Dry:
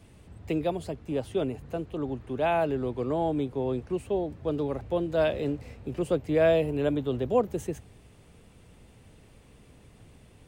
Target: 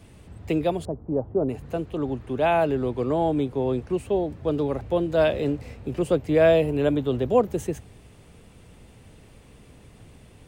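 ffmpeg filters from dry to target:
-filter_complex "[0:a]asettb=1/sr,asplit=3[a][b][c];[a]atrim=end=0.854[d];[b]atrim=start=0.85:end=1.49,asetpts=PTS-STARTPTS,afade=t=in:d=0.004:c=qsin,afade=t=out:st=0.636:d=0.004:c=qsin,lowpass=f=1k:w=0.5412,lowpass=f=1k:w=1.3066[e];[c]atrim=start=1.486[f];[d][e]acrossfade=d=0.004:c1=hsin:c2=qsin[g];[g][f]acrossfade=d=0.004:c1=qsin:c2=hsin,volume=4.5dB"

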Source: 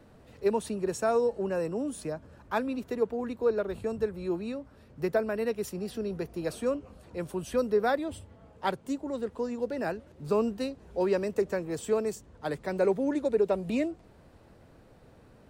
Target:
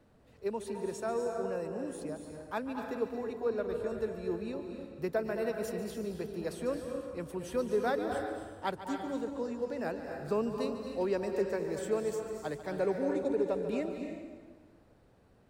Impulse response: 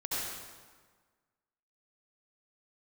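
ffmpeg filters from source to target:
-filter_complex "[0:a]dynaudnorm=f=580:g=9:m=3.5dB,asplit=2[a][b];[1:a]atrim=start_sample=2205,adelay=144[c];[b][c]afir=irnorm=-1:irlink=0,volume=-9dB[d];[a][d]amix=inputs=2:normalize=0,volume=-8.5dB"

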